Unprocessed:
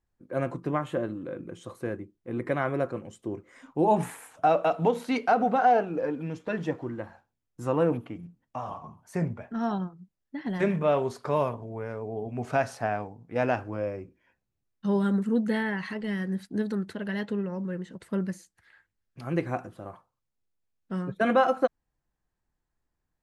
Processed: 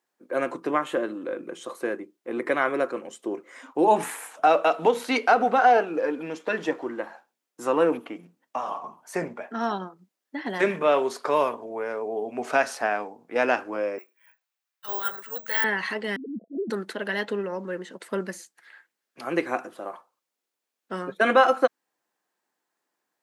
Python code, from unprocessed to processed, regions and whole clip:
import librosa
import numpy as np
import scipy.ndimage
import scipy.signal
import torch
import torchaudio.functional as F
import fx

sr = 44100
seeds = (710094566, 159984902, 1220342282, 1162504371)

y = fx.chain(x, sr, fx.highpass(hz=1100.0, slope=12),
    fx.high_shelf(hz=5300.0, db=-4.0),
    fx.resample_bad(factor=2, down='filtered', up='zero_stuff'), at=(13.98, 15.64))
y = fx.chain(y, sr, fx.sine_speech(),
    fx.cheby_ripple(hz=690.0, ripple_db=6), at=(16.16, 16.7))
y = scipy.signal.sosfilt(scipy.signal.bessel(4, 410.0, 'highpass', norm='mag', fs=sr, output='sos'), y)
y = fx.dynamic_eq(y, sr, hz=680.0, q=1.4, threshold_db=-38.0, ratio=4.0, max_db=-5)
y = y * librosa.db_to_amplitude(8.5)